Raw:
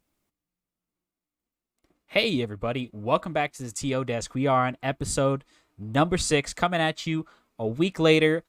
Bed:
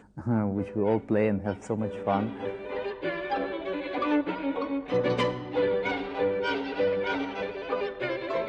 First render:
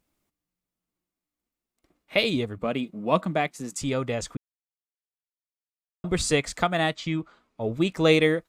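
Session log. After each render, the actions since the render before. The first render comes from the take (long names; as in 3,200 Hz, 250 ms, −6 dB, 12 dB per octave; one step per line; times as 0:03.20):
0:02.58–0:03.80: low shelf with overshoot 130 Hz −9.5 dB, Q 3
0:04.37–0:06.04: silence
0:06.95–0:07.62: high-frequency loss of the air 56 metres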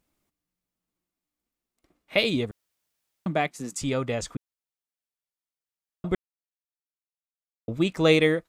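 0:02.51–0:03.26: fill with room tone
0:06.15–0:07.68: silence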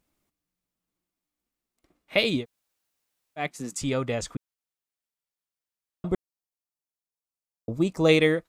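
0:02.41–0:03.41: fill with room tone, crossfade 0.10 s
0:06.11–0:08.09: flat-topped bell 2,300 Hz −9.5 dB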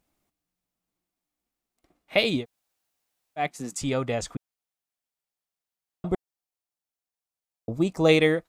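parametric band 740 Hz +5.5 dB 0.36 octaves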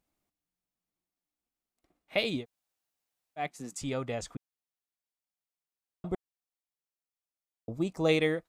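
level −7 dB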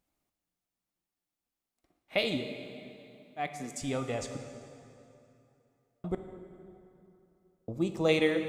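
dense smooth reverb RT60 2.9 s, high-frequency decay 0.75×, pre-delay 0 ms, DRR 6.5 dB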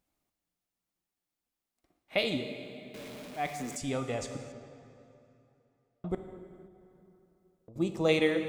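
0:02.94–0:03.77: converter with a step at zero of −41.5 dBFS
0:04.52–0:06.10: high-frequency loss of the air 100 metres
0:06.66–0:07.76: downward compressor 3 to 1, threshold −54 dBFS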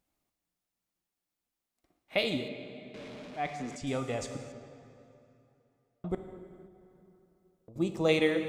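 0:02.48–0:03.87: high-frequency loss of the air 96 metres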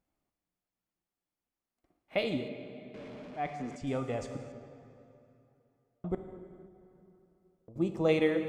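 high-shelf EQ 2,600 Hz −10 dB
notch filter 3,800 Hz, Q 19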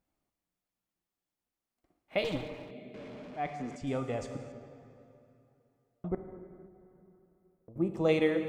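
0:02.24–0:02.71: lower of the sound and its delayed copy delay 6.5 ms
0:06.08–0:07.94: flat-topped bell 4,700 Hz −16 dB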